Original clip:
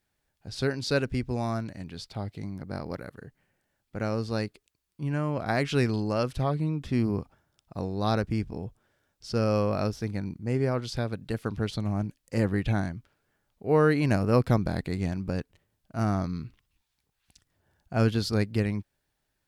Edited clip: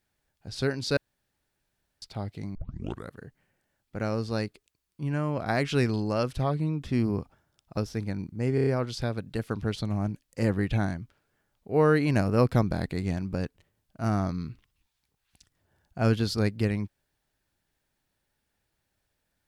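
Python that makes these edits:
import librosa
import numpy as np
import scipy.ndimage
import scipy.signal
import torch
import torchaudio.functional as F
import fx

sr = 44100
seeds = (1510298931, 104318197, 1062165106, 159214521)

y = fx.edit(x, sr, fx.room_tone_fill(start_s=0.97, length_s=1.05),
    fx.tape_start(start_s=2.55, length_s=0.55),
    fx.cut(start_s=7.77, length_s=2.07),
    fx.stutter(start_s=10.62, slice_s=0.03, count=5), tone=tone)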